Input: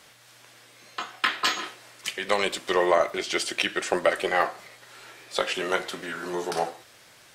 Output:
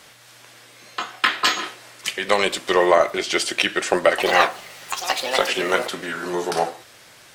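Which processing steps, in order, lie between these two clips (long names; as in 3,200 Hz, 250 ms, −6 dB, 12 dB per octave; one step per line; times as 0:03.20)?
0:04.09–0:06.48: delay with pitch and tempo change per echo 93 ms, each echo +6 semitones, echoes 2
level +5.5 dB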